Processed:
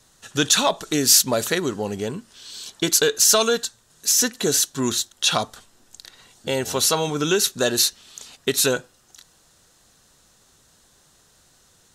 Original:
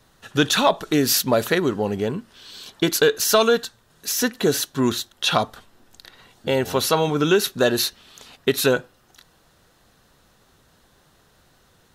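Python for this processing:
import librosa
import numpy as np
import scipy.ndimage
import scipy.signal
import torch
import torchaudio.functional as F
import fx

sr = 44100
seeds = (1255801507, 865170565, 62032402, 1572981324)

y = fx.peak_eq(x, sr, hz=7400.0, db=13.5, octaves=1.4)
y = F.gain(torch.from_numpy(y), -3.5).numpy()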